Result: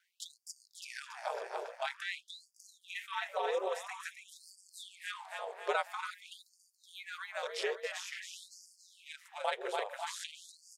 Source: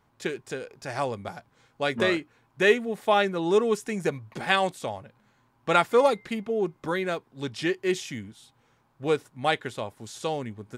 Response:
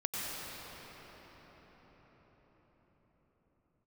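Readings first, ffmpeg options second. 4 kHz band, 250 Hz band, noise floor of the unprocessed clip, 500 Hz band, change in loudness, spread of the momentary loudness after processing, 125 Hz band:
−9.5 dB, below −25 dB, −67 dBFS, −14.5 dB, −13.0 dB, 18 LU, below −40 dB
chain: -filter_complex "[0:a]asplit=2[link_01][link_02];[link_02]aecho=0:1:281|562|843|1124|1405:0.447|0.179|0.0715|0.0286|0.0114[link_03];[link_01][link_03]amix=inputs=2:normalize=0,acompressor=threshold=-34dB:ratio=3,lowshelf=frequency=360:gain=5.5,asplit=2[link_04][link_05];[link_05]adelay=544,lowpass=frequency=2800:poles=1,volume=-10dB,asplit=2[link_06][link_07];[link_07]adelay=544,lowpass=frequency=2800:poles=1,volume=0.43,asplit=2[link_08][link_09];[link_09]adelay=544,lowpass=frequency=2800:poles=1,volume=0.43,asplit=2[link_10][link_11];[link_11]adelay=544,lowpass=frequency=2800:poles=1,volume=0.43,asplit=2[link_12][link_13];[link_13]adelay=544,lowpass=frequency=2800:poles=1,volume=0.43[link_14];[link_06][link_08][link_10][link_12][link_14]amix=inputs=5:normalize=0[link_15];[link_04][link_15]amix=inputs=2:normalize=0,aeval=exprs='val(0)*sin(2*PI*90*n/s)':channel_layout=same,afftfilt=real='re*gte(b*sr/1024,360*pow(4600/360,0.5+0.5*sin(2*PI*0.49*pts/sr)))':imag='im*gte(b*sr/1024,360*pow(4600/360,0.5+0.5*sin(2*PI*0.49*pts/sr)))':win_size=1024:overlap=0.75,volume=2.5dB"

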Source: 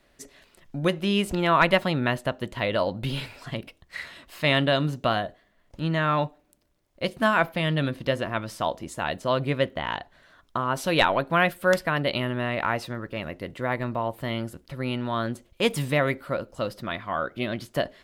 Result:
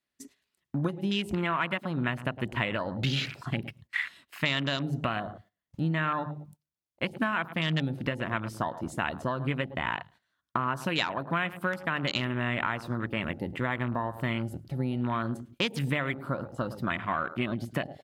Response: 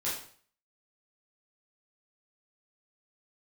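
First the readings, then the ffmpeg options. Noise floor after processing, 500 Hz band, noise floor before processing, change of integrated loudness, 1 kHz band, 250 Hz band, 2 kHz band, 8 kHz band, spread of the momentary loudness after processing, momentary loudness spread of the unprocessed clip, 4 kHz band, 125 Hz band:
below −85 dBFS, −9.5 dB, −63 dBFS, −5.0 dB, −5.5 dB, −3.0 dB, −3.5 dB, −7.0 dB, 6 LU, 12 LU, −4.0 dB, −2.0 dB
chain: -filter_complex "[0:a]highshelf=frequency=3400:gain=6.5,bandreject=frequency=50:width_type=h:width=6,bandreject=frequency=100:width_type=h:width=6,bandreject=frequency=150:width_type=h:width=6,asplit=2[link_01][link_02];[link_02]adelay=107,lowpass=frequency=1400:poles=1,volume=-14.5dB,asplit=2[link_03][link_04];[link_04]adelay=107,lowpass=frequency=1400:poles=1,volume=0.33,asplit=2[link_05][link_06];[link_06]adelay=107,lowpass=frequency=1400:poles=1,volume=0.33[link_07];[link_01][link_03][link_05][link_07]amix=inputs=4:normalize=0,acompressor=threshold=-28dB:ratio=20,highpass=75,afwtdn=0.0112,agate=range=-13dB:threshold=-58dB:ratio=16:detection=peak,equalizer=frequency=540:width_type=o:width=1.1:gain=-8,volume=6dB"

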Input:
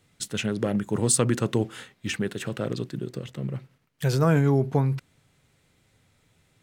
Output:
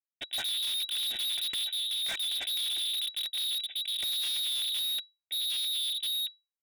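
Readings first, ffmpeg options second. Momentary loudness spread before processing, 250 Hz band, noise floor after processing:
13 LU, below −35 dB, below −85 dBFS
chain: -filter_complex "[0:a]aresample=11025,acrusher=bits=4:mix=0:aa=0.5,aresample=44100,asuperstop=centerf=2700:order=12:qfactor=4.9,equalizer=frequency=1100:width_type=o:width=2.4:gain=2.5,aecho=1:1:2.5:0.44,asplit=2[link_01][link_02];[link_02]adelay=1283,volume=-12dB,highshelf=frequency=4000:gain=-28.9[link_03];[link_01][link_03]amix=inputs=2:normalize=0,asoftclip=type=tanh:threshold=-24dB,acompressor=threshold=-33dB:ratio=3,tiltshelf=frequency=800:gain=8.5,acontrast=47,lowpass=frequency=3300:width_type=q:width=0.5098,lowpass=frequency=3300:width_type=q:width=0.6013,lowpass=frequency=3300:width_type=q:width=0.9,lowpass=frequency=3300:width_type=q:width=2.563,afreqshift=-3900,asoftclip=type=hard:threshold=-36dB,volume=5dB"

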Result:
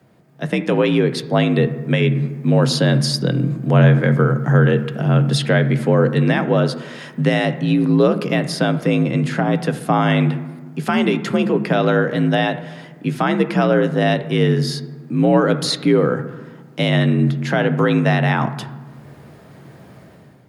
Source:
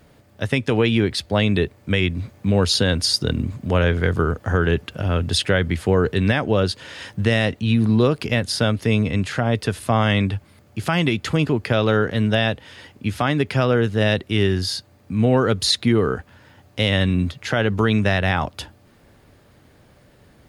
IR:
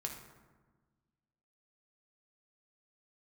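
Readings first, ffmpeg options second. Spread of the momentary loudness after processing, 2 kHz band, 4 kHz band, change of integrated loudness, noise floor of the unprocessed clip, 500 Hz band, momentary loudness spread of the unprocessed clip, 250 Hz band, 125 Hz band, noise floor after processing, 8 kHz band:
10 LU, +1.0 dB, −2.5 dB, +3.0 dB, −53 dBFS, +3.5 dB, 8 LU, +4.0 dB, +4.0 dB, −44 dBFS, −2.0 dB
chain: -filter_complex "[0:a]dynaudnorm=framelen=130:gausssize=7:maxgain=11.5dB,afreqshift=52,asplit=2[link_01][link_02];[1:a]atrim=start_sample=2205,lowpass=2400[link_03];[link_02][link_03]afir=irnorm=-1:irlink=0,volume=-1dB[link_04];[link_01][link_04]amix=inputs=2:normalize=0,volume=-6.5dB"

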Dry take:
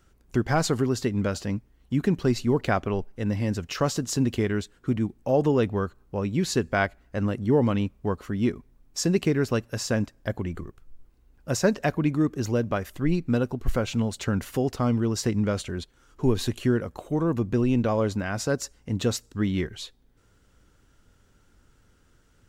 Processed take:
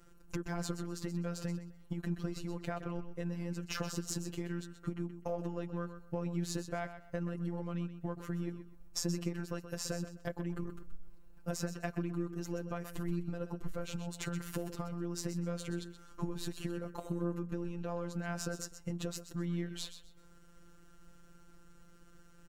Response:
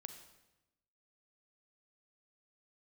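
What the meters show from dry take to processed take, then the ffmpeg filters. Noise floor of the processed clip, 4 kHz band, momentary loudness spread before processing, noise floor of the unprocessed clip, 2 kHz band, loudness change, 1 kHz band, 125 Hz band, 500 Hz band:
−57 dBFS, −10.5 dB, 8 LU, −62 dBFS, −14.0 dB, −13.5 dB, −14.0 dB, −12.0 dB, −15.0 dB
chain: -filter_complex "[0:a]aeval=exprs='if(lt(val(0),0),0.708*val(0),val(0))':channel_layout=same,equalizer=frequency=3500:width=0.7:gain=-4.5,asplit=2[link_01][link_02];[link_02]alimiter=limit=-21.5dB:level=0:latency=1,volume=2dB[link_03];[link_01][link_03]amix=inputs=2:normalize=0,acompressor=threshold=-30dB:ratio=12,afftfilt=real='hypot(re,im)*cos(PI*b)':imag='0':win_size=1024:overlap=0.75,aecho=1:1:127|254|381:0.282|0.0676|0.0162,volume=-1dB"

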